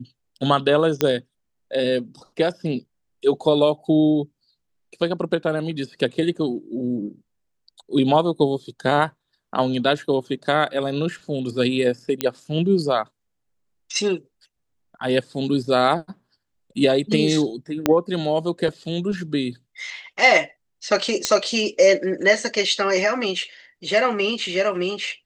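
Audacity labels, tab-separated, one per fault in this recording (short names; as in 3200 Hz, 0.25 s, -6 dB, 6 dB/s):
1.010000	1.010000	pop -4 dBFS
12.210000	12.210000	pop -6 dBFS
17.860000	17.860000	pop -3 dBFS
21.250000	21.250000	pop -4 dBFS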